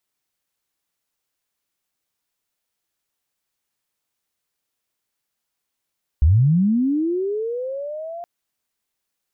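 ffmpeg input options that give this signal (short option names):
-f lavfi -i "aevalsrc='pow(10,(-10-19.5*t/2.02)/20)*sin(2*PI*(65*t+635*t*t/(2*2.02)))':d=2.02:s=44100"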